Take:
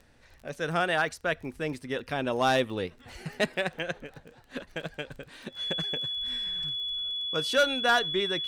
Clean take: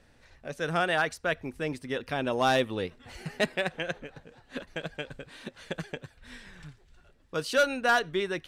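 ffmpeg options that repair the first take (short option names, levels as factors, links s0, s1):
-af "adeclick=t=4,bandreject=f=3400:w=30"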